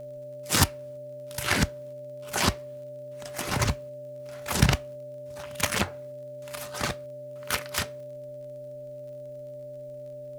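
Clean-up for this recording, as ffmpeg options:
-af "adeclick=t=4,bandreject=f=131.2:t=h:w=4,bandreject=f=262.4:t=h:w=4,bandreject=f=393.6:t=h:w=4,bandreject=f=524.8:t=h:w=4,bandreject=f=590:w=30,agate=range=-21dB:threshold=-33dB"

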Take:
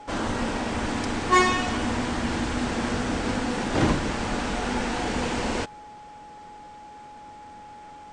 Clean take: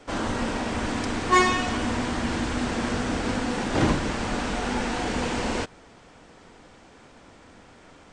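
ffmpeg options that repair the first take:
-af "bandreject=f=840:w=30"

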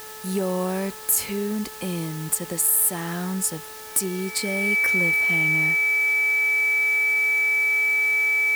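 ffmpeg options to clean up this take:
-af "bandreject=f=433.7:t=h:w=4,bandreject=f=867.4:t=h:w=4,bandreject=f=1.3011k:t=h:w=4,bandreject=f=1.7348k:t=h:w=4,bandreject=f=2.3k:w=30,afwtdn=0.0089"

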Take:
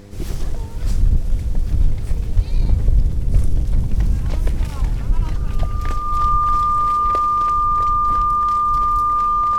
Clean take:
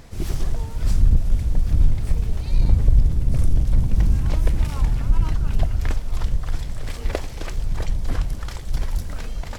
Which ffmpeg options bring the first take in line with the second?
-filter_complex "[0:a]bandreject=f=100.3:t=h:w=4,bandreject=f=200.6:t=h:w=4,bandreject=f=300.9:t=h:w=4,bandreject=f=401.2:t=h:w=4,bandreject=f=501.5:t=h:w=4,bandreject=f=1.2k:w=30,asplit=3[a][b][c];[a]afade=t=out:st=2.35:d=0.02[d];[b]highpass=f=140:w=0.5412,highpass=f=140:w=1.3066,afade=t=in:st=2.35:d=0.02,afade=t=out:st=2.47:d=0.02[e];[c]afade=t=in:st=2.47:d=0.02[f];[d][e][f]amix=inputs=3:normalize=0,asplit=3[g][h][i];[g]afade=t=out:st=3.32:d=0.02[j];[h]highpass=f=140:w=0.5412,highpass=f=140:w=1.3066,afade=t=in:st=3.32:d=0.02,afade=t=out:st=3.44:d=0.02[k];[i]afade=t=in:st=3.44:d=0.02[l];[j][k][l]amix=inputs=3:normalize=0,asetnsamples=n=441:p=0,asendcmd='6.87 volume volume 4dB',volume=0dB"

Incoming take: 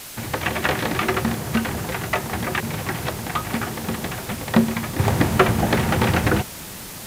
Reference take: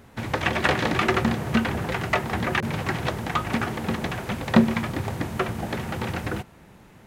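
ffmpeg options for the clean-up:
-af "afwtdn=0.016,asetnsamples=n=441:p=0,asendcmd='4.99 volume volume -10dB',volume=0dB"

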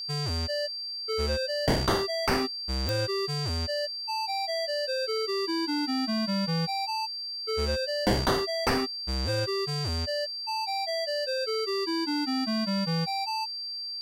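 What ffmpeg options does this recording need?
-af "adeclick=t=4,bandreject=f=4.7k:w=30,agate=range=-21dB:threshold=-28dB"

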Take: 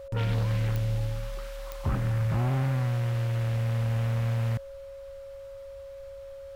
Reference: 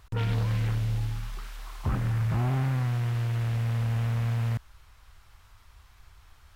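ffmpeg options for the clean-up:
-af "adeclick=t=4,bandreject=f=550:w=30"

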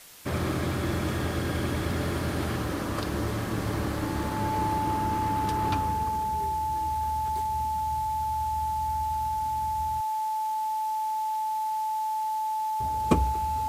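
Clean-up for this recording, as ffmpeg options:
-af "bandreject=f=870:w=30,afwtdn=0.004"

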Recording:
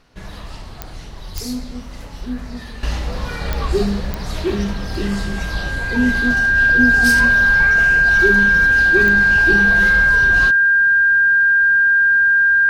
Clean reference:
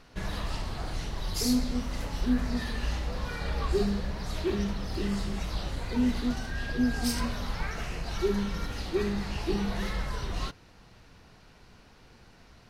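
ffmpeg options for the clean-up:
-filter_complex "[0:a]adeclick=t=4,bandreject=f=1.6k:w=30,asplit=3[a][b][c];[a]afade=t=out:st=1.34:d=0.02[d];[b]highpass=f=140:w=0.5412,highpass=f=140:w=1.3066,afade=t=in:st=1.34:d=0.02,afade=t=out:st=1.46:d=0.02[e];[c]afade=t=in:st=1.46:d=0.02[f];[d][e][f]amix=inputs=3:normalize=0,asplit=3[g][h][i];[g]afade=t=out:st=9.45:d=0.02[j];[h]highpass=f=140:w=0.5412,highpass=f=140:w=1.3066,afade=t=in:st=9.45:d=0.02,afade=t=out:st=9.57:d=0.02[k];[i]afade=t=in:st=9.57:d=0.02[l];[j][k][l]amix=inputs=3:normalize=0,asetnsamples=n=441:p=0,asendcmd='2.83 volume volume -9dB',volume=0dB"

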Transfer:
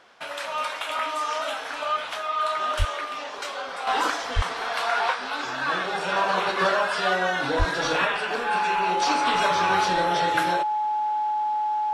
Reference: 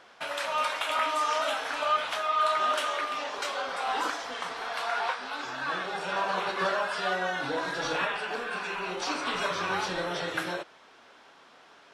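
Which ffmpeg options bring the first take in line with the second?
-filter_complex "[0:a]bandreject=f=850:w=30,asplit=3[a][b][c];[a]afade=t=out:st=2.78:d=0.02[d];[b]highpass=f=140:w=0.5412,highpass=f=140:w=1.3066,afade=t=in:st=2.78:d=0.02,afade=t=out:st=2.9:d=0.02[e];[c]afade=t=in:st=2.9:d=0.02[f];[d][e][f]amix=inputs=3:normalize=0,asplit=3[g][h][i];[g]afade=t=out:st=4.35:d=0.02[j];[h]highpass=f=140:w=0.5412,highpass=f=140:w=1.3066,afade=t=in:st=4.35:d=0.02,afade=t=out:st=4.47:d=0.02[k];[i]afade=t=in:st=4.47:d=0.02[l];[j][k][l]amix=inputs=3:normalize=0,asplit=3[m][n][o];[m]afade=t=out:st=7.58:d=0.02[p];[n]highpass=f=140:w=0.5412,highpass=f=140:w=1.3066,afade=t=in:st=7.58:d=0.02,afade=t=out:st=7.7:d=0.02[q];[o]afade=t=in:st=7.7:d=0.02[r];[p][q][r]amix=inputs=3:normalize=0,asetnsamples=n=441:p=0,asendcmd='3.87 volume volume -6dB',volume=0dB"

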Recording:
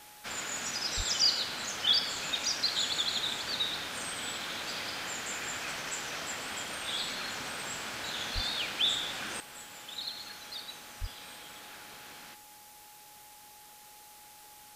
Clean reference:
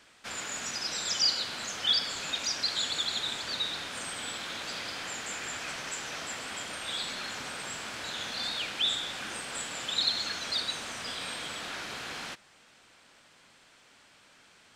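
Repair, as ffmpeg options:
-filter_complex "[0:a]bandreject=f=840:w=30,asplit=3[a][b][c];[a]afade=t=out:st=0.96:d=0.02[d];[b]highpass=f=140:w=0.5412,highpass=f=140:w=1.3066,afade=t=in:st=0.96:d=0.02,afade=t=out:st=1.08:d=0.02[e];[c]afade=t=in:st=1.08:d=0.02[f];[d][e][f]amix=inputs=3:normalize=0,asplit=3[g][h][i];[g]afade=t=out:st=8.34:d=0.02[j];[h]highpass=f=140:w=0.5412,highpass=f=140:w=1.3066,afade=t=in:st=8.34:d=0.02,afade=t=out:st=8.46:d=0.02[k];[i]afade=t=in:st=8.46:d=0.02[l];[j][k][l]amix=inputs=3:normalize=0,asplit=3[m][n][o];[m]afade=t=out:st=11:d=0.02[p];[n]highpass=f=140:w=0.5412,highpass=f=140:w=1.3066,afade=t=in:st=11:d=0.02,afade=t=out:st=11.12:d=0.02[q];[o]afade=t=in:st=11.12:d=0.02[r];[p][q][r]amix=inputs=3:normalize=0,afwtdn=0.0022,asetnsamples=n=441:p=0,asendcmd='9.4 volume volume 11dB',volume=0dB"

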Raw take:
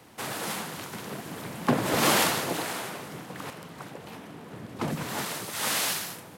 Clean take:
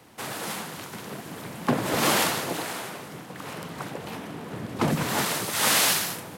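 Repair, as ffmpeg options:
-af "asetnsamples=n=441:p=0,asendcmd='3.5 volume volume 6.5dB',volume=0dB"

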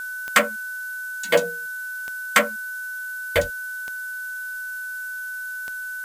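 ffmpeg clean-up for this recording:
-af "adeclick=t=4,bandreject=f=1.5k:w=30,afftdn=nr=30:nf=-32"

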